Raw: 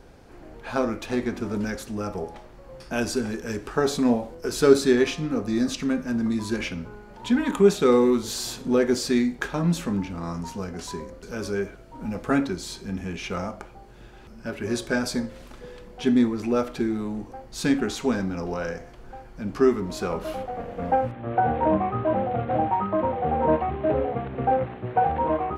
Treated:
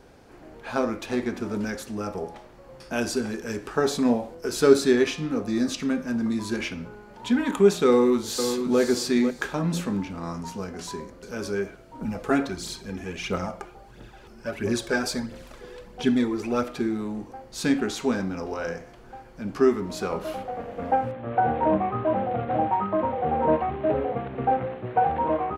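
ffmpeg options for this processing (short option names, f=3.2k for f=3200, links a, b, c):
-filter_complex "[0:a]asplit=2[a][b];[b]afade=t=in:st=7.88:d=0.01,afade=t=out:st=8.8:d=0.01,aecho=0:1:500|1000|1500:0.398107|0.0796214|0.0159243[c];[a][c]amix=inputs=2:normalize=0,asettb=1/sr,asplit=3[d][e][f];[d]atrim=end=12.014[g];[e]atrim=start=12.01:end=16.64,asetpts=PTS-STARTPTS,afade=t=in:d=0.004:c=qsin,afade=t=out:st=4.626:d=0.004:c=qsin,aphaser=in_gain=1:out_gain=1:delay=3:decay=0.5:speed=1.5:type=triangular[h];[f]atrim=start=16.636[i];[g][h]acrossfade=d=0.004:c1=hsin:c2=qsin[j];[j][i]acrossfade=d=0.004:c1=qsin:c2=hsin,lowshelf=f=76:g=-9.5,bandreject=f=174.2:t=h:w=4,bandreject=f=348.4:t=h:w=4,bandreject=f=522.6:t=h:w=4,bandreject=f=696.8:t=h:w=4,bandreject=f=871:t=h:w=4,bandreject=f=1.0452k:t=h:w=4,bandreject=f=1.2194k:t=h:w=4,bandreject=f=1.3936k:t=h:w=4,bandreject=f=1.5678k:t=h:w=4,bandreject=f=1.742k:t=h:w=4,bandreject=f=1.9162k:t=h:w=4,bandreject=f=2.0904k:t=h:w=4,bandreject=f=2.2646k:t=h:w=4,bandreject=f=2.4388k:t=h:w=4,bandreject=f=2.613k:t=h:w=4,bandreject=f=2.7872k:t=h:w=4,bandreject=f=2.9614k:t=h:w=4,bandreject=f=3.1356k:t=h:w=4,bandreject=f=3.3098k:t=h:w=4,bandreject=f=3.484k:t=h:w=4,bandreject=f=3.6582k:t=h:w=4,bandreject=f=3.8324k:t=h:w=4,bandreject=f=4.0066k:t=h:w=4,bandreject=f=4.1808k:t=h:w=4,bandreject=f=4.355k:t=h:w=4,bandreject=f=4.5292k:t=h:w=4,bandreject=f=4.7034k:t=h:w=4,bandreject=f=4.8776k:t=h:w=4,bandreject=f=5.0518k:t=h:w=4"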